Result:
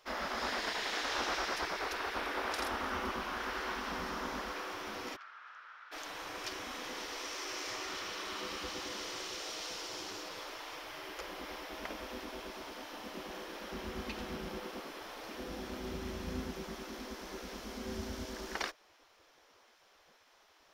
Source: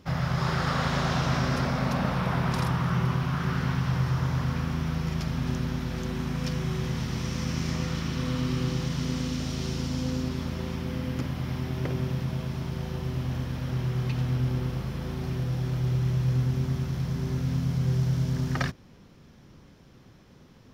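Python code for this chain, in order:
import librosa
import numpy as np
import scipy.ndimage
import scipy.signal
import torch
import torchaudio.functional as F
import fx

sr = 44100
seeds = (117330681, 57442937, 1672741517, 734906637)

y = fx.spec_gate(x, sr, threshold_db=-15, keep='weak')
y = fx.ladder_bandpass(y, sr, hz=1500.0, resonance_pct=65, at=(5.15, 5.91), fade=0.02)
y = y * librosa.db_to_amplitude(-2.0)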